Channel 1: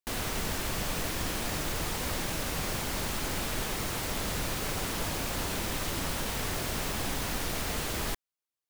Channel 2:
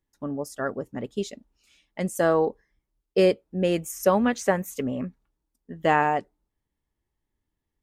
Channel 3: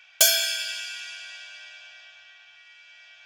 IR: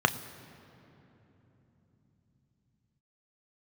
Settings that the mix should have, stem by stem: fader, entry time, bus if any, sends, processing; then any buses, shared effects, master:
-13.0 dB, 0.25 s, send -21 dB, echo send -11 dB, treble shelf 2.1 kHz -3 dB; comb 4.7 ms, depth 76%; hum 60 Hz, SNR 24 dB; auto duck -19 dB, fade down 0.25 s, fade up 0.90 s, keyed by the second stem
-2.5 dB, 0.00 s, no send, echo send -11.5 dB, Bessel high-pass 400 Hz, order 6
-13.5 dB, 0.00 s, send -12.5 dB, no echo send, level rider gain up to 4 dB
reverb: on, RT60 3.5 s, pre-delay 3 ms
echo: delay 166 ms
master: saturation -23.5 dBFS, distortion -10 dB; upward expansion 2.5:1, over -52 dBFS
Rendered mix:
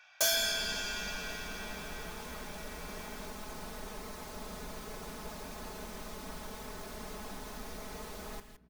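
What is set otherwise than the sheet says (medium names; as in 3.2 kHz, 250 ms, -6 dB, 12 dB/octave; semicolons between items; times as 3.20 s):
stem 2: muted; stem 3 -13.5 dB -> -4.5 dB; master: missing upward expansion 2.5:1, over -52 dBFS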